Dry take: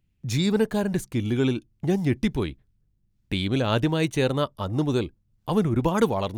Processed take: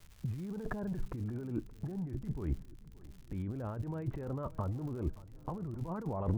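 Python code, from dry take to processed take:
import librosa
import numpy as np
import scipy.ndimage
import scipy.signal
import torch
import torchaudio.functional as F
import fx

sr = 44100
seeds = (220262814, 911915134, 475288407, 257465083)

y = scipy.signal.sosfilt(scipy.signal.butter(4, 1500.0, 'lowpass', fs=sr, output='sos'), x)
y = fx.low_shelf(y, sr, hz=86.0, db=12.0)
y = fx.over_compress(y, sr, threshold_db=-32.0, ratio=-1.0)
y = fx.dmg_crackle(y, sr, seeds[0], per_s=fx.steps((0.0, 280.0), (1.24, 90.0)), level_db=-41.0)
y = fx.vibrato(y, sr, rate_hz=0.4, depth_cents=8.5)
y = fx.echo_feedback(y, sr, ms=575, feedback_pct=56, wet_db=-20.0)
y = F.gain(torch.from_numpy(y), -5.5).numpy()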